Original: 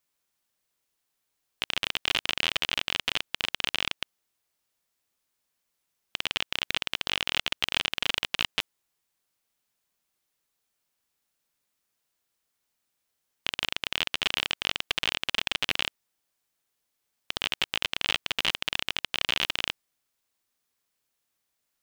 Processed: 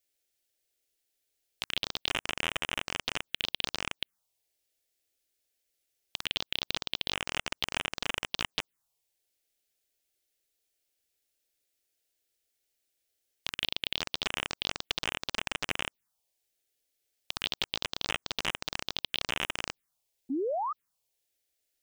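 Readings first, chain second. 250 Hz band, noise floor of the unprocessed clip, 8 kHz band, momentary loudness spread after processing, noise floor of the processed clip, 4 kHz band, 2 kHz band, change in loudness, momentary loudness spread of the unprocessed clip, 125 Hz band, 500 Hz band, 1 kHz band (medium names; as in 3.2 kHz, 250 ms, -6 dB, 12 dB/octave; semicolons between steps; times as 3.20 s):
+3.0 dB, -80 dBFS, -2.0 dB, 6 LU, -83 dBFS, -5.5 dB, -5.5 dB, -5.0 dB, 7 LU, -0.5 dB, +2.5 dB, -0.5 dB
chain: painted sound rise, 20.29–20.73 s, 240–1300 Hz -30 dBFS; touch-sensitive phaser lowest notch 180 Hz, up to 4.4 kHz, full sweep at -26.5 dBFS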